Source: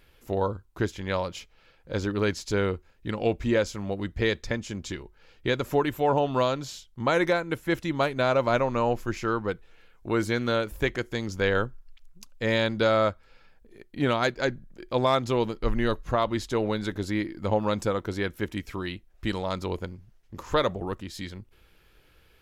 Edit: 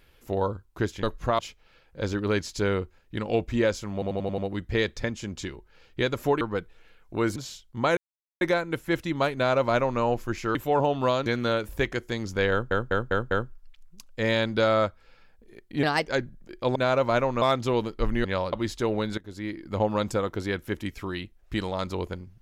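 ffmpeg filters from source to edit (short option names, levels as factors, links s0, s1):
-filter_complex "[0:a]asplit=24[s0][s1][s2][s3][s4][s5][s6][s7][s8][s9][s10][s11][s12][s13][s14][s15][s16][s17][s18][s19][s20][s21][s22][s23];[s0]atrim=end=1.032[s24];[s1]atrim=start=15.878:end=16.242[s25];[s2]atrim=start=1.308:end=3.942[s26];[s3]atrim=start=3.848:end=3.942[s27];[s4]atrim=start=3.848:end=3.942[s28];[s5]atrim=start=3.848:end=3.942[s29];[s6]atrim=start=3.848:end=3.942[s30];[s7]atrim=start=3.848:end=5.882[s31];[s8]atrim=start=9.338:end=10.292[s32];[s9]atrim=start=6.588:end=7.2,asetpts=PTS-STARTPTS,afade=t=out:st=0.608:d=0.004:c=hsin,apad=pad_dur=0.44[s33];[s10]atrim=start=7.2:end=9.342,asetpts=PTS-STARTPTS,afade=t=in:d=0.004:c=hsin[s34];[s11]atrim=start=5.878:end=6.592[s35];[s12]atrim=start=10.288:end=11.742[s36];[s13]atrim=start=11.538:end=11.742[s37];[s14]atrim=start=11.538:end=11.742[s38];[s15]atrim=start=11.538:end=11.742[s39];[s16]atrim=start=11.538:end=14.064[s40];[s17]atrim=start=14.06:end=14.37,asetpts=PTS-STARTPTS,asetrate=55566,aresample=44100[s41];[s18]atrim=start=14.366:end=15.052[s42];[s19]atrim=start=8.138:end=8.802[s43];[s20]atrim=start=15.048:end=15.882[s44];[s21]atrim=start=1.028:end=1.312[s45];[s22]atrim=start=16.238:end=16.89,asetpts=PTS-STARTPTS,afade=t=out:st=0.648:d=0.004:c=hsin:silence=0.141254[s46];[s23]atrim=start=16.89,asetpts=PTS-STARTPTS,afade=t=in:d=0.63:silence=0.141254[s47];[s24][s25]acrossfade=d=0.004:c1=hsin:c2=hsin[s48];[s48][s26]acrossfade=d=0.004:c1=hsin:c2=hsin[s49];[s49][s27]acrossfade=d=0.004:c1=hsin:c2=hsin[s50];[s50][s28]acrossfade=d=0.004:c1=hsin:c2=hsin[s51];[s51][s29]acrossfade=d=0.004:c1=hsin:c2=hsin[s52];[s52][s30]acrossfade=d=0.004:c1=hsin:c2=hsin[s53];[s53][s31]acrossfade=d=0.004:c1=hsin:c2=hsin[s54];[s54][s32]acrossfade=d=0.004:c1=hsin:c2=hsin[s55];[s33][s34]concat=n=2:v=0:a=1[s56];[s55][s56]acrossfade=d=0.004:c1=hsin:c2=hsin[s57];[s57][s35]acrossfade=d=0.004:c1=hsin:c2=hsin[s58];[s58][s36]acrossfade=d=0.004:c1=hsin:c2=hsin[s59];[s59][s37]acrossfade=d=0.004:c1=hsin:c2=hsin[s60];[s60][s38]acrossfade=d=0.004:c1=hsin:c2=hsin[s61];[s61][s39]acrossfade=d=0.004:c1=hsin:c2=hsin[s62];[s62][s40]acrossfade=d=0.004:c1=hsin:c2=hsin[s63];[s63][s41]acrossfade=d=0.004:c1=hsin:c2=hsin[s64];[s64][s42]acrossfade=d=0.004:c1=hsin:c2=hsin[s65];[s65][s43]acrossfade=d=0.004:c1=hsin:c2=hsin[s66];[s66][s44]acrossfade=d=0.004:c1=hsin:c2=hsin[s67];[s67][s45]acrossfade=d=0.004:c1=hsin:c2=hsin[s68];[s46][s47]concat=n=2:v=0:a=1[s69];[s68][s69]acrossfade=d=0.004:c1=hsin:c2=hsin"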